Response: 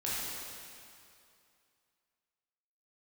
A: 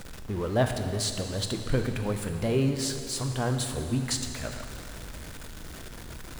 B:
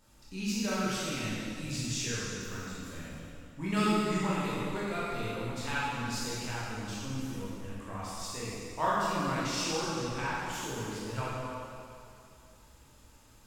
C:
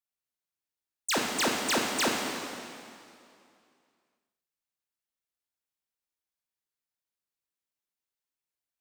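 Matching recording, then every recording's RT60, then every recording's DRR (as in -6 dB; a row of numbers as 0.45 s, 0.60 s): B; 2.5 s, 2.5 s, 2.5 s; 5.5 dB, -8.5 dB, -1.0 dB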